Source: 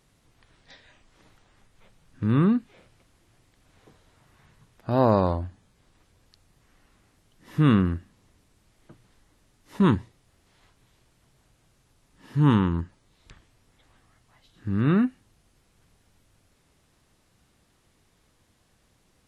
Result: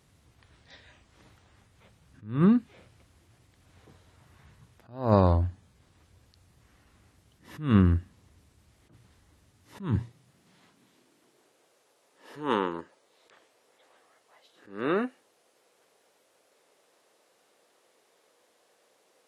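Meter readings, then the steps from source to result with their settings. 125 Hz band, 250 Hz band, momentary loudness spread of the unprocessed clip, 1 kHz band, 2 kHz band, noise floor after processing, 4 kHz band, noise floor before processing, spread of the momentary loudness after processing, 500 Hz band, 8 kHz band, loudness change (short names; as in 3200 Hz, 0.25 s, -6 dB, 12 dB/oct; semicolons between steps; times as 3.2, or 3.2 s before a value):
-3.5 dB, -4.5 dB, 15 LU, -3.0 dB, -2.5 dB, -68 dBFS, -3.5 dB, -66 dBFS, 15 LU, -2.5 dB, n/a, -3.0 dB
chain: high-pass sweep 68 Hz -> 490 Hz, 9.37–11.76; attack slew limiter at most 140 dB/s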